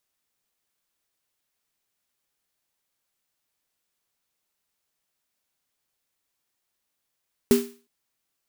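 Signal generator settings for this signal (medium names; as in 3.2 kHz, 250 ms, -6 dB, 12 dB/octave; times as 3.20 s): snare drum length 0.36 s, tones 240 Hz, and 400 Hz, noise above 910 Hz, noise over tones -11.5 dB, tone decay 0.34 s, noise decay 0.39 s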